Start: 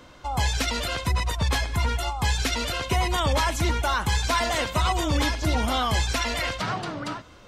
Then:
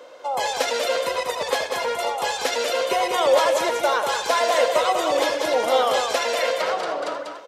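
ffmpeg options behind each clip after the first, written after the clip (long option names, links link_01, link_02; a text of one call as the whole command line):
ffmpeg -i in.wav -filter_complex "[0:a]highpass=frequency=510:width_type=q:width=4.9,asplit=2[link_01][link_02];[link_02]aecho=0:1:81|193|289:0.211|0.562|0.15[link_03];[link_01][link_03]amix=inputs=2:normalize=0" out.wav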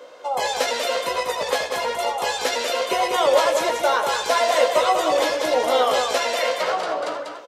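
ffmpeg -i in.wav -filter_complex "[0:a]asplit=2[link_01][link_02];[link_02]adelay=16,volume=-6.5dB[link_03];[link_01][link_03]amix=inputs=2:normalize=0" out.wav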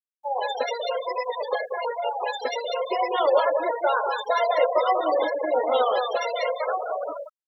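ffmpeg -i in.wav -af "afftfilt=real='re*gte(hypot(re,im),0.141)':imag='im*gte(hypot(re,im),0.141)':win_size=1024:overlap=0.75,acrusher=bits=11:mix=0:aa=0.000001,volume=-2.5dB" out.wav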